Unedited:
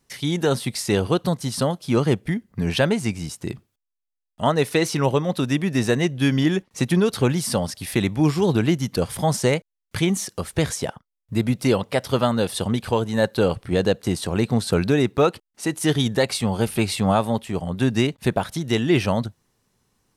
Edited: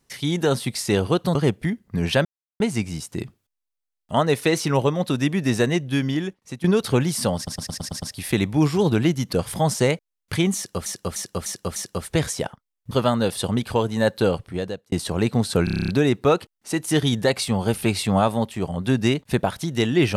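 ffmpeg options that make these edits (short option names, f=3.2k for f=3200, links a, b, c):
-filter_complex "[0:a]asplit=24[a][b][c][d][e][f][g][h][i][j][k][l][m][n][o][p][q][r][s][t][u][v][w][x];[a]atrim=end=1.352[y];[b]atrim=start=1.988:end=2.89,asetpts=PTS-STARTPTS,afade=t=out:st=0.898:d=0.004:c=hsin,apad=pad_dur=0.35[z];[c]atrim=start=2.89:end=6.93,asetpts=PTS-STARTPTS,afade=t=in:d=0.004:c=hsin,afade=t=out:st=3.04:d=1:silence=0.177828[aa];[d]atrim=start=6.93:end=7.762,asetpts=PTS-STARTPTS,afade=t=in:d=0.004:c=hsin:silence=0.177828[ab];[e]atrim=start=7.648:end=7.762[ac];[f]atrim=start=7.648:end=7.762[ad];[g]atrim=start=7.648:end=7.762[ae];[h]atrim=start=7.648:end=7.762[af];[i]atrim=start=7.648:end=7.762[ag];[j]atrim=start=7.648:end=10.492[ah];[k]atrim=start=10.188:end=10.492[ai];[l]atrim=start=10.188:end=10.492[aj];[m]atrim=start=10.188:end=10.492[ak];[n]atrim=start=10.188:end=11.342[al];[o]atrim=start=12.078:end=14.09,asetpts=PTS-STARTPTS,afade=t=out:st=1.312:d=0.7[am];[p]atrim=start=14.09:end=14.842,asetpts=PTS-STARTPTS,afade=t=in:d=0.004:c=hsin[an];[q]atrim=start=14.808:end=14.842[ao];[r]atrim=start=14.808:end=14.842[ap];[s]atrim=start=14.808:end=14.842[aq];[t]atrim=start=14.808:end=14.842[ar];[u]atrim=start=14.808:end=14.842[as];[v]atrim=start=14.808:end=14.842[at];[w]atrim=start=14.808:end=14.842[au];[x]atrim=start=14.808[av];[z][aa][ab]concat=n=3:v=0:a=1[aw];[y][aw]acrossfade=d=0.004:c1=hsin:c2=hsin[ax];[ax][ac]acrossfade=d=0.004:c1=hsin:c2=hsin[ay];[ay][ad]acrossfade=d=0.004:c1=hsin:c2=hsin[az];[az][ae]acrossfade=d=0.004:c1=hsin:c2=hsin[ba];[ba][af]acrossfade=d=0.004:c1=hsin:c2=hsin[bb];[bb][ag]acrossfade=d=0.004:c1=hsin:c2=hsin[bc];[bc][ah]acrossfade=d=0.004:c1=hsin:c2=hsin[bd];[bd][ai]acrossfade=d=0.004:c1=hsin:c2=hsin[be];[be][aj]acrossfade=d=0.004:c1=hsin:c2=hsin[bf];[bf][ak]acrossfade=d=0.004:c1=hsin:c2=hsin[bg];[bg][al]acrossfade=d=0.004:c1=hsin:c2=hsin[bh];[am][an]concat=n=2:v=0:a=1[bi];[bh][bi]acrossfade=d=0.004:c1=hsin:c2=hsin[bj];[bj][ao]acrossfade=d=0.004:c1=hsin:c2=hsin[bk];[bk][ap]acrossfade=d=0.004:c1=hsin:c2=hsin[bl];[bl][aq]acrossfade=d=0.004:c1=hsin:c2=hsin[bm];[bm][ar]acrossfade=d=0.004:c1=hsin:c2=hsin[bn];[bn][as]acrossfade=d=0.004:c1=hsin:c2=hsin[bo];[bo][at]acrossfade=d=0.004:c1=hsin:c2=hsin[bp];[bp][au]acrossfade=d=0.004:c1=hsin:c2=hsin[bq];[bq][av]acrossfade=d=0.004:c1=hsin:c2=hsin"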